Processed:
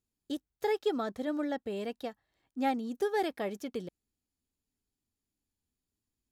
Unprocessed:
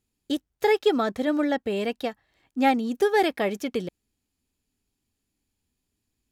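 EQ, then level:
parametric band 2,400 Hz −4.5 dB 0.87 octaves
−9.0 dB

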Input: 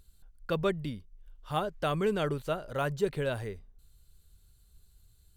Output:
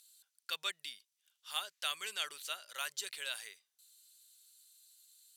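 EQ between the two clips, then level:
resonant band-pass 3,900 Hz, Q 0.62
first difference
+12.5 dB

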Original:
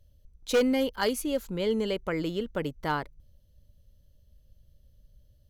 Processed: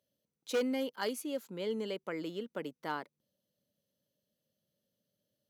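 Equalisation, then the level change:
high-pass filter 190 Hz 24 dB per octave
−8.0 dB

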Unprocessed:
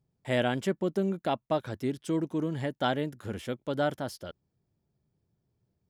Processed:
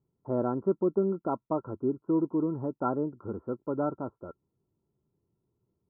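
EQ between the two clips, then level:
Chebyshev low-pass with heavy ripple 1,400 Hz, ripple 9 dB
+4.5 dB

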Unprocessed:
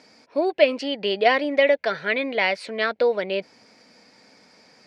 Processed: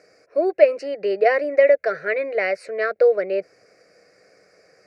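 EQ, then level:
parametric band 380 Hz +6.5 dB 2.4 octaves
phaser with its sweep stopped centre 910 Hz, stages 6
−1.0 dB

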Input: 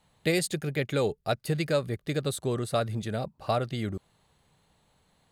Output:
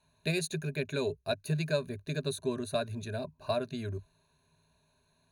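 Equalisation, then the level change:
EQ curve with evenly spaced ripples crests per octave 1.5, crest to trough 16 dB
−7.5 dB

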